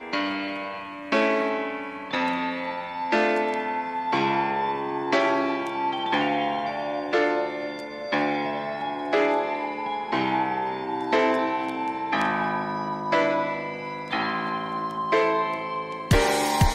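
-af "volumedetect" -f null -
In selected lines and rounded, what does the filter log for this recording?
mean_volume: -25.5 dB
max_volume: -7.8 dB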